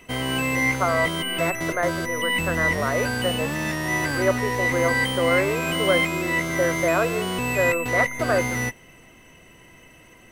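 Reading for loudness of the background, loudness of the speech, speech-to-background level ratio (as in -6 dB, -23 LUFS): -24.0 LUFS, -26.5 LUFS, -2.5 dB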